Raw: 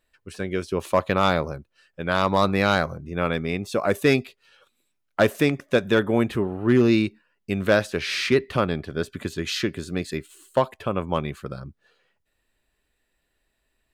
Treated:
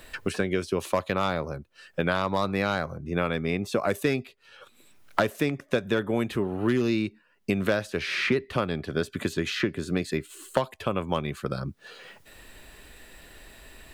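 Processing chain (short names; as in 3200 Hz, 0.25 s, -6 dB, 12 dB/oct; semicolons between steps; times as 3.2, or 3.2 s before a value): three-band squash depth 100%; gain -5 dB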